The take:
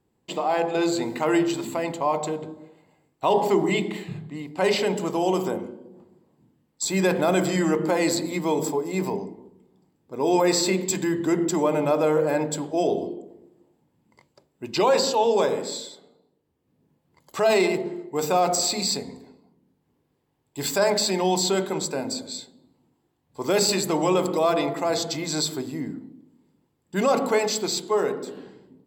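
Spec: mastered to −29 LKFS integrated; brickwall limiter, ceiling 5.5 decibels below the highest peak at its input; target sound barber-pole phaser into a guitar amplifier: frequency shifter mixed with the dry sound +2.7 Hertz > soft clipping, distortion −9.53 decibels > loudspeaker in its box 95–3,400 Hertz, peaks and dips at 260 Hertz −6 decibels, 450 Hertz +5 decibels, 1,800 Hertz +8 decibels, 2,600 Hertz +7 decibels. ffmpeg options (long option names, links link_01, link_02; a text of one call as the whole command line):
ffmpeg -i in.wav -filter_complex "[0:a]alimiter=limit=-16dB:level=0:latency=1,asplit=2[link_01][link_02];[link_02]afreqshift=2.7[link_03];[link_01][link_03]amix=inputs=2:normalize=1,asoftclip=threshold=-29dB,highpass=95,equalizer=frequency=260:width_type=q:width=4:gain=-6,equalizer=frequency=450:width_type=q:width=4:gain=5,equalizer=frequency=1800:width_type=q:width=4:gain=8,equalizer=frequency=2600:width_type=q:width=4:gain=7,lowpass=frequency=3400:width=0.5412,lowpass=frequency=3400:width=1.3066,volume=4dB" out.wav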